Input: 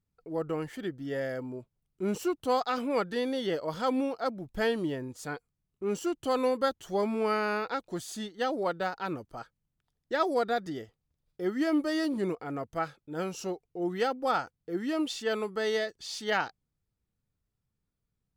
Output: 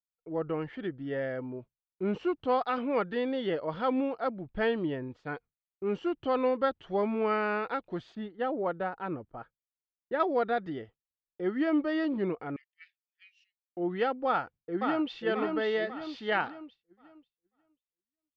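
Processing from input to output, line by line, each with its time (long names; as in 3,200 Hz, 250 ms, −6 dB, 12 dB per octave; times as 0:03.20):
0:08.15–0:10.20: low-pass filter 1,400 Hz 6 dB per octave
0:12.56–0:13.77: Chebyshev high-pass with heavy ripple 1,800 Hz, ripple 3 dB
0:14.27–0:15.21: delay throw 540 ms, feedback 50%, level −4 dB
whole clip: low-pass filter 3,200 Hz 24 dB per octave; downward expander −45 dBFS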